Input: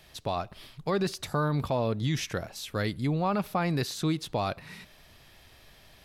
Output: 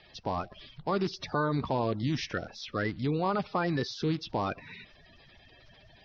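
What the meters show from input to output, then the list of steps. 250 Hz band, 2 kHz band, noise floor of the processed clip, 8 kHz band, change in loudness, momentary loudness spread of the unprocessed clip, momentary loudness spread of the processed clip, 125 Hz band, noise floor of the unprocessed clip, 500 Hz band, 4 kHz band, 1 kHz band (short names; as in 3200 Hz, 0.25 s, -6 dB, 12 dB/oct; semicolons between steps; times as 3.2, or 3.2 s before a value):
-1.0 dB, 0.0 dB, -58 dBFS, -9.5 dB, -1.5 dB, 8 LU, 8 LU, -3.5 dB, -56 dBFS, -1.5 dB, -2.5 dB, 0.0 dB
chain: bin magnitudes rounded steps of 30 dB; elliptic low-pass 5500 Hz, stop band 40 dB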